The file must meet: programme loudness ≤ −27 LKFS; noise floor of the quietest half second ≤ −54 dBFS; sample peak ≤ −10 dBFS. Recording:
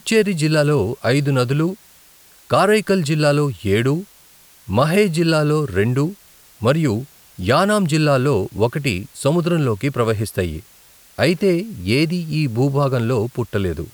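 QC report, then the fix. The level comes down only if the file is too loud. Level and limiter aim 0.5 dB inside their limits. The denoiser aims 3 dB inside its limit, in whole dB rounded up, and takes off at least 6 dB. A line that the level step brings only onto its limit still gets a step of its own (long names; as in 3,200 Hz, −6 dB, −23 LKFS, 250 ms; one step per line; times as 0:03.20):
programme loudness −18.5 LKFS: out of spec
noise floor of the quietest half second −49 dBFS: out of spec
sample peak −4.0 dBFS: out of spec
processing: level −9 dB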